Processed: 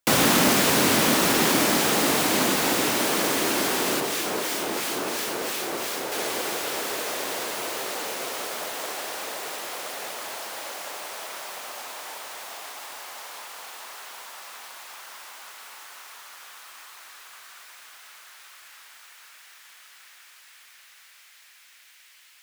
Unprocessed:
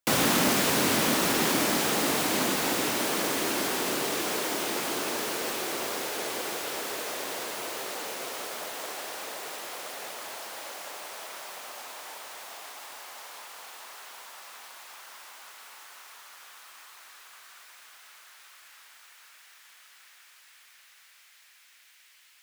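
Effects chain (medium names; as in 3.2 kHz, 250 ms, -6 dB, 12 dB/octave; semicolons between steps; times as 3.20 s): 4.00–6.12 s: harmonic tremolo 2.9 Hz, depth 50%, crossover 1.5 kHz; trim +4.5 dB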